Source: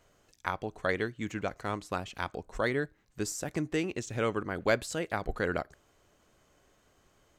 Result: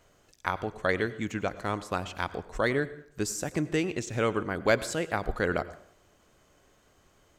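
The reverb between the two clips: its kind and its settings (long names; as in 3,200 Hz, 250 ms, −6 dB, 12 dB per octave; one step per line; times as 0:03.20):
dense smooth reverb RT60 0.63 s, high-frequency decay 0.75×, pre-delay 80 ms, DRR 16 dB
level +3 dB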